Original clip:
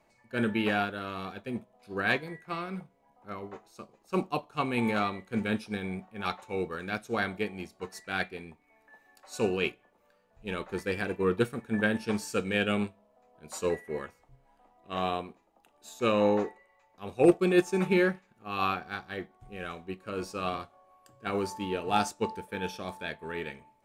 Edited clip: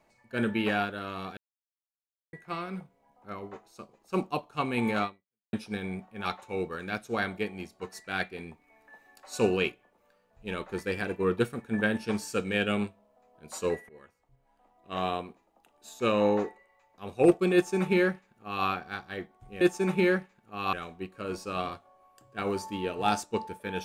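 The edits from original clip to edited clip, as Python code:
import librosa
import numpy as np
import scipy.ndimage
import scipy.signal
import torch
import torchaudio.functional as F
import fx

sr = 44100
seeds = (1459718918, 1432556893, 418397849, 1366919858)

y = fx.edit(x, sr, fx.silence(start_s=1.37, length_s=0.96),
    fx.fade_out_span(start_s=5.04, length_s=0.49, curve='exp'),
    fx.clip_gain(start_s=8.38, length_s=1.25, db=3.0),
    fx.fade_in_from(start_s=13.89, length_s=1.07, floor_db=-22.5),
    fx.duplicate(start_s=17.54, length_s=1.12, to_s=19.61), tone=tone)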